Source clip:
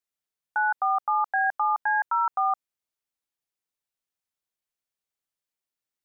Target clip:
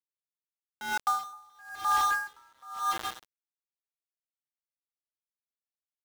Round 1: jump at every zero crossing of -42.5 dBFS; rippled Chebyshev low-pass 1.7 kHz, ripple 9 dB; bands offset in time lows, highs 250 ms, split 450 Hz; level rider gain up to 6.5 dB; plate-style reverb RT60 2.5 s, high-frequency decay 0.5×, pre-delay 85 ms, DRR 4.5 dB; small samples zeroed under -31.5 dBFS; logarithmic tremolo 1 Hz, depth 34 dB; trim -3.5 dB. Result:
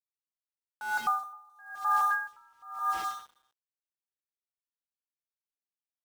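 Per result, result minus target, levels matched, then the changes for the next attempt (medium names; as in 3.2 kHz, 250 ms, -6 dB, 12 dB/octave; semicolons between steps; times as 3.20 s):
small samples zeroed: distortion -8 dB; jump at every zero crossing: distortion -8 dB
change: small samples zeroed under -24 dBFS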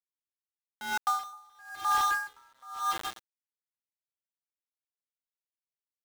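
jump at every zero crossing: distortion -8 dB
change: jump at every zero crossing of -33.5 dBFS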